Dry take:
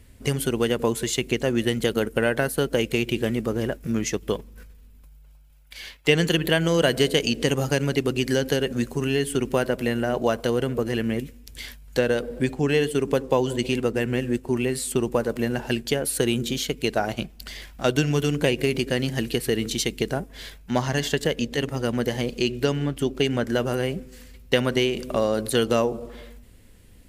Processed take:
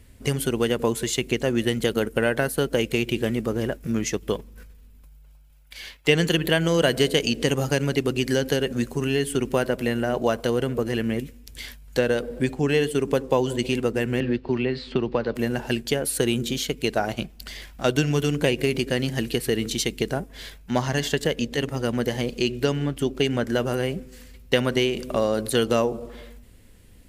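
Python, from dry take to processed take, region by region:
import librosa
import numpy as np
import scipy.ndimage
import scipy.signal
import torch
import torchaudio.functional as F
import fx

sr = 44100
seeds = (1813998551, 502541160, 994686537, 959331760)

y = fx.chain(x, sr, fx.cheby1_lowpass(hz=4500.0, order=4),
    fx.band_squash(depth_pct=70), at=(14.2, 15.35))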